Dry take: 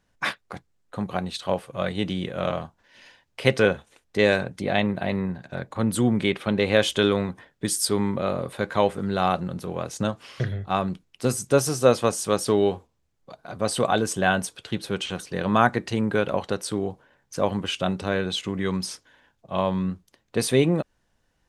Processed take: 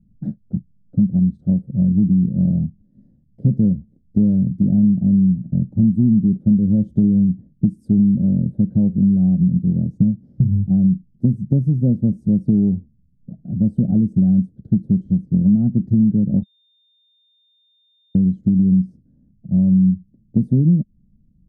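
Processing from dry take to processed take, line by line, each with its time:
0:16.43–0:18.15: beep over 3,630 Hz −12.5 dBFS
whole clip: inverse Chebyshev low-pass filter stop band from 1,000 Hz, stop band 40 dB; low shelf with overshoot 300 Hz +14 dB, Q 3; downward compressor 4 to 1, threshold −13 dBFS

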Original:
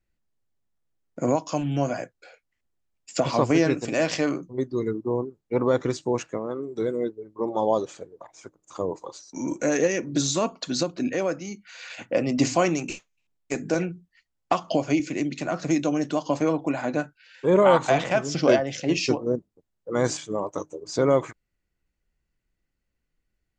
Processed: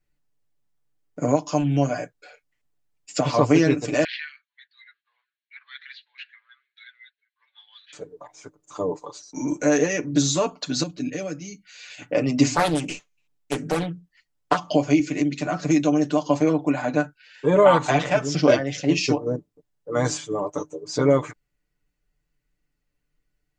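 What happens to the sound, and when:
0:04.04–0:07.93: Chebyshev band-pass filter 1,600–4,200 Hz, order 4
0:10.83–0:12.02: parametric band 930 Hz −12 dB 2.1 octaves
0:12.53–0:14.59: highs frequency-modulated by the lows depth 0.64 ms
whole clip: comb filter 6.8 ms, depth 80%

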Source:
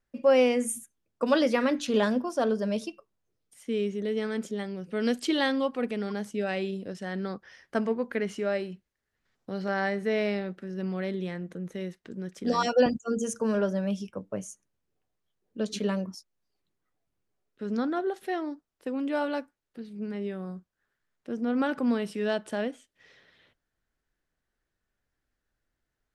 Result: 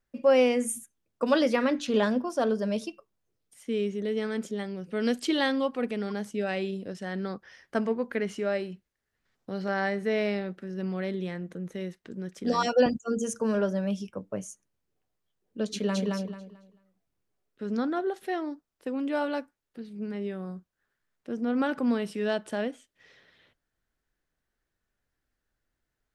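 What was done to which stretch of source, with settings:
0:01.56–0:02.30: high-shelf EQ 9,900 Hz −9 dB
0:15.70–0:16.12: delay throw 220 ms, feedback 25%, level −2.5 dB

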